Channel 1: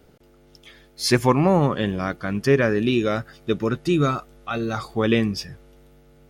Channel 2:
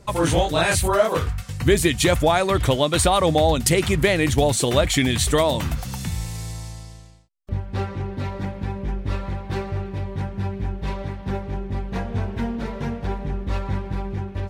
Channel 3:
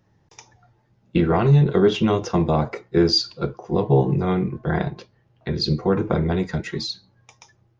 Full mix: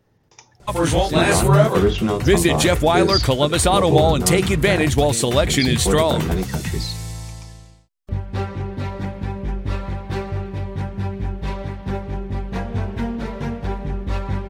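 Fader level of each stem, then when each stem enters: -13.5 dB, +1.5 dB, -1.0 dB; 0.00 s, 0.60 s, 0.00 s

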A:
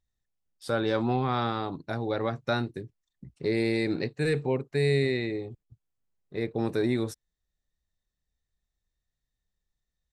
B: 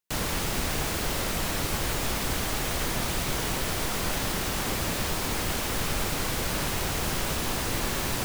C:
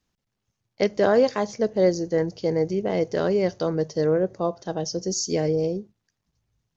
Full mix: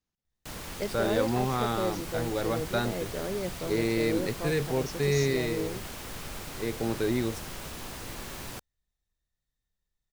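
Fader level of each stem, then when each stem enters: -1.5 dB, -11.0 dB, -11.5 dB; 0.25 s, 0.35 s, 0.00 s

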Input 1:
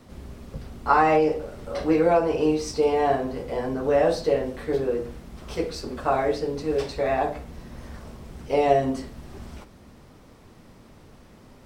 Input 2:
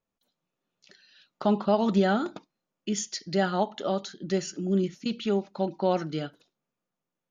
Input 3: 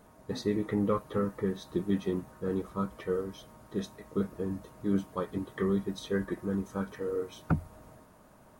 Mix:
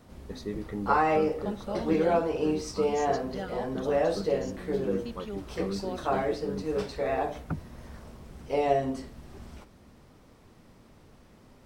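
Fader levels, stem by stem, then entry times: -5.5 dB, -12.5 dB, -5.5 dB; 0.00 s, 0.00 s, 0.00 s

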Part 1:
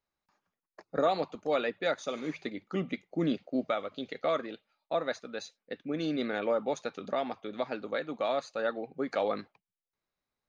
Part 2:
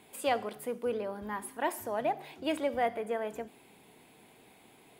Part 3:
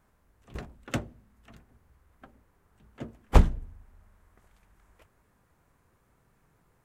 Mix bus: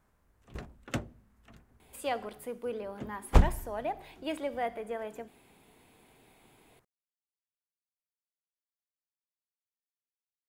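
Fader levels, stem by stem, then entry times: mute, -3.5 dB, -3.0 dB; mute, 1.80 s, 0.00 s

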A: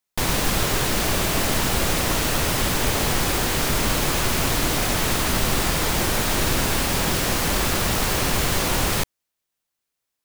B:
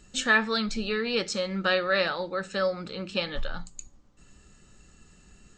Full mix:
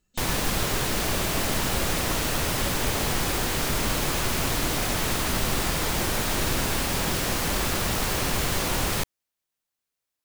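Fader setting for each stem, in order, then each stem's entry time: -4.0 dB, -19.0 dB; 0.00 s, 0.00 s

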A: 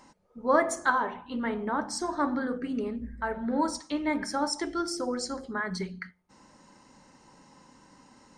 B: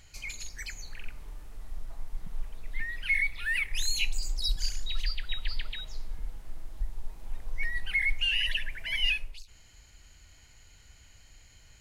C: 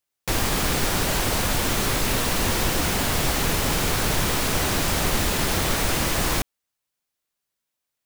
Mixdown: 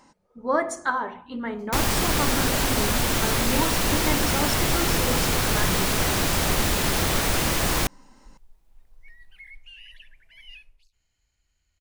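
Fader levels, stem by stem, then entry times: 0.0 dB, -18.5 dB, 0.0 dB; 0.00 s, 1.45 s, 1.45 s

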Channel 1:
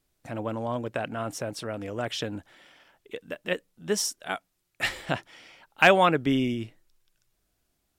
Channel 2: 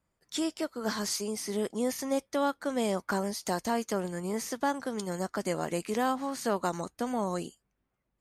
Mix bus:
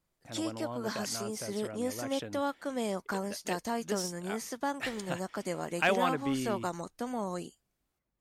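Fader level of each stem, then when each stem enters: -9.5 dB, -4.0 dB; 0.00 s, 0.00 s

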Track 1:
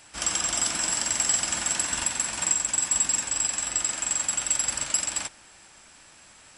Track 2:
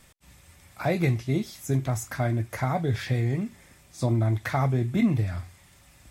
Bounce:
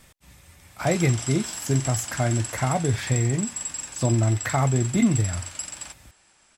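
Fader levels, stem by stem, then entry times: -8.0 dB, +2.5 dB; 0.65 s, 0.00 s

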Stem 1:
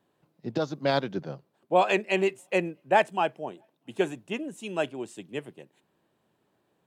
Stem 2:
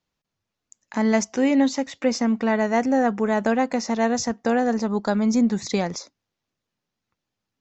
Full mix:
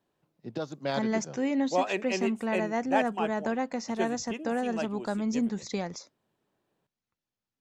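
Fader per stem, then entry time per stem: -6.0 dB, -9.0 dB; 0.00 s, 0.00 s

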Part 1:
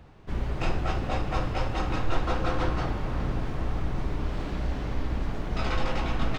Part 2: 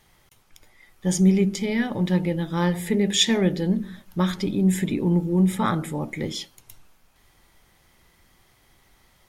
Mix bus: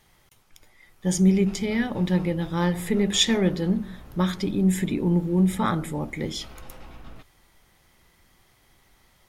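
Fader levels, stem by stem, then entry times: -16.5 dB, -1.0 dB; 0.85 s, 0.00 s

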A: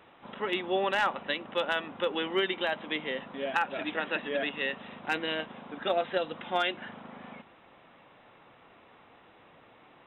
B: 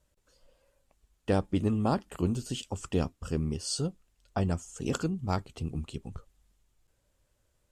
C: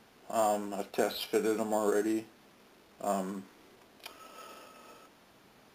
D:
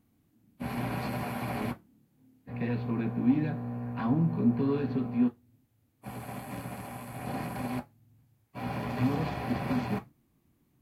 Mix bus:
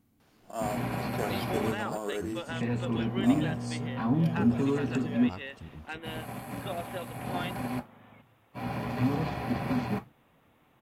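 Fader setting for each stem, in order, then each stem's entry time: -9.5 dB, -11.5 dB, -5.5 dB, +0.5 dB; 0.80 s, 0.00 s, 0.20 s, 0.00 s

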